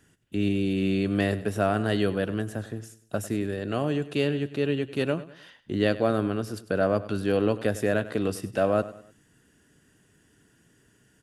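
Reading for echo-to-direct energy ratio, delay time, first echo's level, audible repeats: −15.5 dB, 99 ms, −16.0 dB, 3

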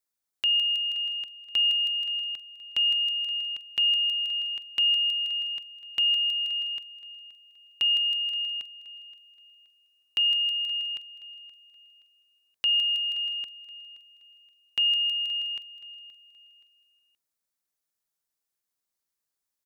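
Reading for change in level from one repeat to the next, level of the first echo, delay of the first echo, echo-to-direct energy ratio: −9.5 dB, −17.0 dB, 524 ms, −16.5 dB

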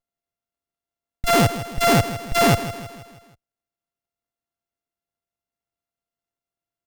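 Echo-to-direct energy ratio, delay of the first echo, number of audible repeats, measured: −12.0 dB, 160 ms, 4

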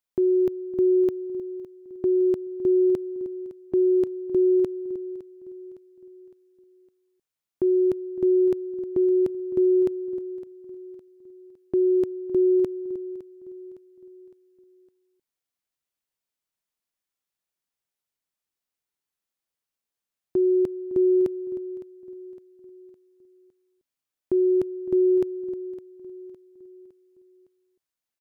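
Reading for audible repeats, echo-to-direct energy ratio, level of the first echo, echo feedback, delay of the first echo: 3, −16.0 dB, −17.0 dB, 46%, 560 ms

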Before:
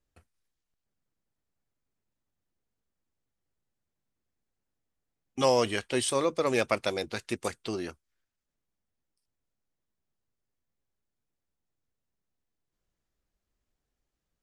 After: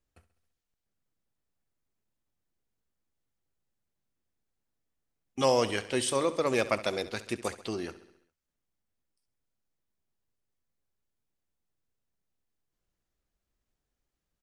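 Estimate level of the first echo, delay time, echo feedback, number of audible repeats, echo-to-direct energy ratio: −15.5 dB, 67 ms, 59%, 5, −13.5 dB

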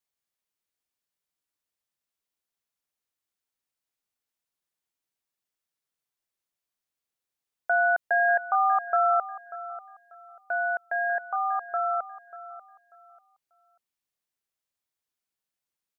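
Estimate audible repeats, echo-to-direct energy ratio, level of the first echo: 2, −15.0 dB, −15.5 dB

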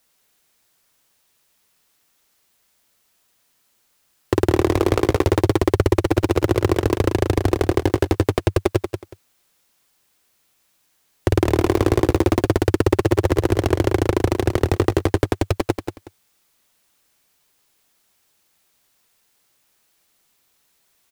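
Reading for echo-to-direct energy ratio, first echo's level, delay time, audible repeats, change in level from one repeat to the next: −7.5 dB, −7.5 dB, 184 ms, 2, −13.5 dB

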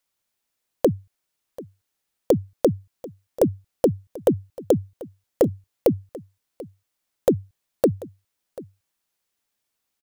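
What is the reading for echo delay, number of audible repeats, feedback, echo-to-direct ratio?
739 ms, 1, repeats not evenly spaced, −19.0 dB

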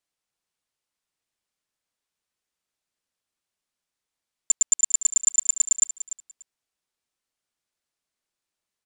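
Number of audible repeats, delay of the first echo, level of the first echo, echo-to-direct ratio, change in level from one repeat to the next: 2, 293 ms, −13.5 dB, −13.5 dB, −15.5 dB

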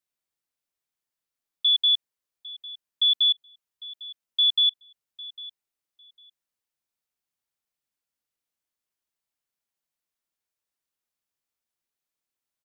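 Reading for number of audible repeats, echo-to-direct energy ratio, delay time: 2, −19.0 dB, 802 ms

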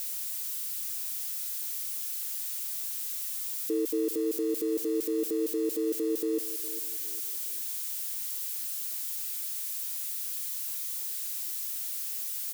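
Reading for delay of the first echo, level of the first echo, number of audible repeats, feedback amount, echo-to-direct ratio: 408 ms, −15.0 dB, 3, 35%, −14.5 dB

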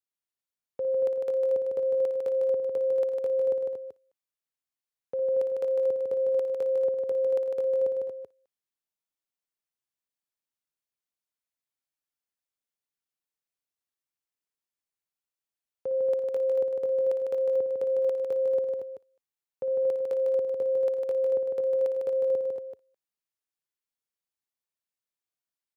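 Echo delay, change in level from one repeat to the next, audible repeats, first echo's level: 57 ms, repeats not evenly spaced, 5, −10.0 dB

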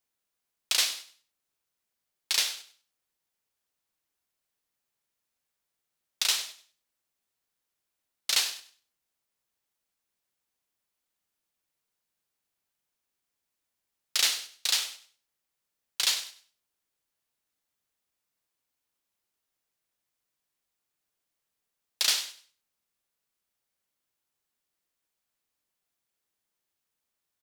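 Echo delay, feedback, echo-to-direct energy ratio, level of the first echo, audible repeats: 98 ms, 26%, −14.5 dB, −15.0 dB, 2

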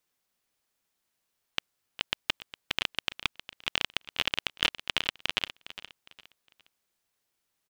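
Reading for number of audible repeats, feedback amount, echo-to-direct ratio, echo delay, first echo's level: 3, 31%, −14.0 dB, 409 ms, −14.5 dB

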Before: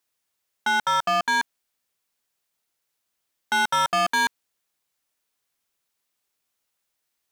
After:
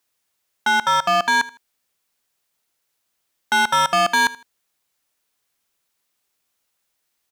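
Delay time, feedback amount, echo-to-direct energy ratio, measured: 79 ms, 26%, −18.5 dB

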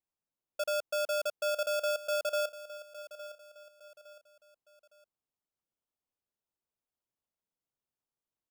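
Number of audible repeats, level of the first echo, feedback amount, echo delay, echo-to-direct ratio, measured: 3, −15.0 dB, 38%, 861 ms, −14.5 dB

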